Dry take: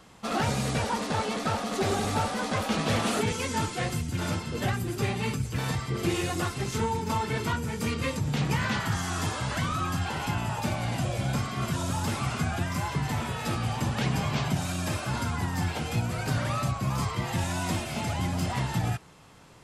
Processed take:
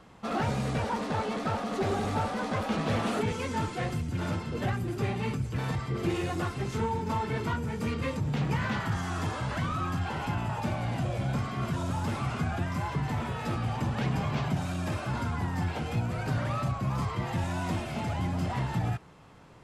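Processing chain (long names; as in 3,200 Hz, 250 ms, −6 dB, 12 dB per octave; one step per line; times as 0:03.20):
high-shelf EQ 3,500 Hz −12 dB
in parallel at −7.5 dB: gain into a clipping stage and back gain 34.5 dB
on the sum: level −2.5 dB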